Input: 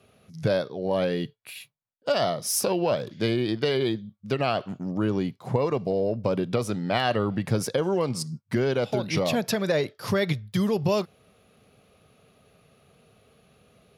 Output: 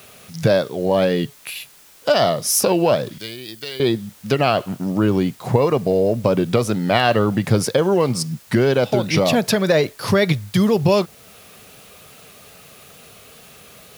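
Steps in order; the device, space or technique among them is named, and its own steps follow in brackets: noise-reduction cassette on a plain deck (tape noise reduction on one side only encoder only; wow and flutter; white noise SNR 29 dB); 3.18–3.80 s: pre-emphasis filter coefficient 0.9; trim +8 dB

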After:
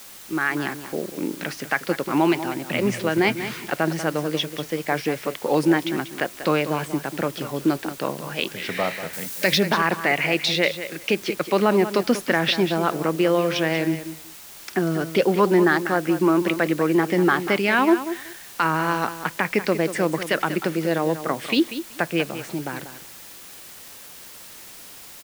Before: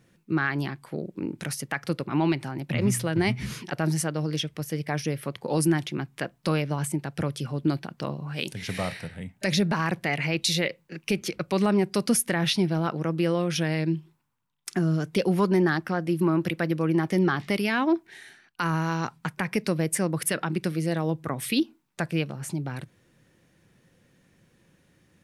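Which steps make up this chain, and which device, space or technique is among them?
dictaphone (band-pass 290–3500 Hz; level rider gain up to 7.5 dB; wow and flutter; white noise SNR 19 dB); 9.13–9.58 s: treble shelf 4.5 kHz +11 dB; feedback delay 190 ms, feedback 16%, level -11.5 dB

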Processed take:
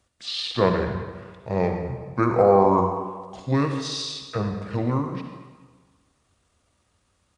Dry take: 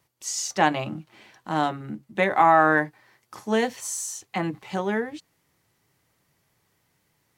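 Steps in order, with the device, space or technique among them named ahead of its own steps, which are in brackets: monster voice (pitch shift -8.5 st; bass shelf 120 Hz +4 dB; reverberation RT60 1.5 s, pre-delay 52 ms, DRR 4.5 dB)

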